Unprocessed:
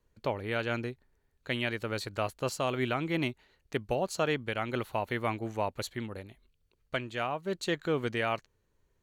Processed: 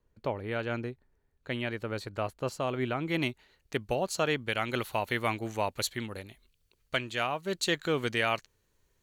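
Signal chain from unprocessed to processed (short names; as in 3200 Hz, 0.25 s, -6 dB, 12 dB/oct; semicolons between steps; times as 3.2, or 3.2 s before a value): high shelf 2100 Hz -6.5 dB, from 3.08 s +4 dB, from 4.49 s +9 dB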